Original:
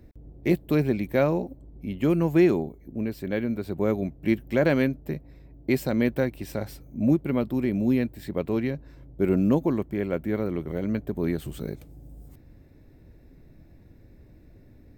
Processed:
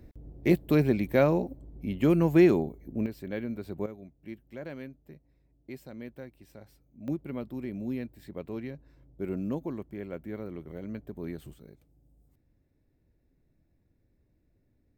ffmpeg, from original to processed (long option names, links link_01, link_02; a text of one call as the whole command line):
ffmpeg -i in.wav -af "asetnsamples=nb_out_samples=441:pad=0,asendcmd='3.06 volume volume -7dB;3.86 volume volume -19dB;7.08 volume volume -11dB;11.54 volume volume -18.5dB',volume=-0.5dB" out.wav